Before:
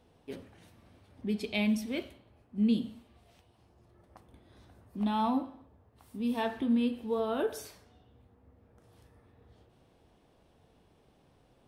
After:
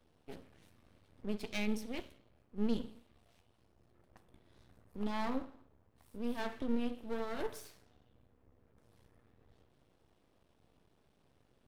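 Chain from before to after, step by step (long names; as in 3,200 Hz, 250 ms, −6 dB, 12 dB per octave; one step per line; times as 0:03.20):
half-wave rectification
parametric band 830 Hz −2.5 dB
level −2.5 dB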